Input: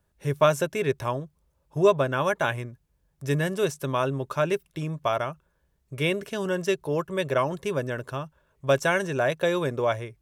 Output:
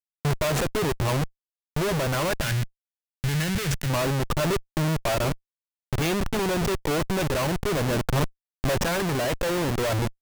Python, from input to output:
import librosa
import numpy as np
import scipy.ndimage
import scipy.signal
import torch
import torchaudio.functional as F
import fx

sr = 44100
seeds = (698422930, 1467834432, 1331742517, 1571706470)

y = fx.schmitt(x, sr, flips_db=-33.0)
y = fx.band_shelf(y, sr, hz=550.0, db=-10.5, octaves=2.6, at=(2.41, 3.9))
y = fx.rider(y, sr, range_db=4, speed_s=0.5)
y = F.gain(torch.from_numpy(y), 3.5).numpy()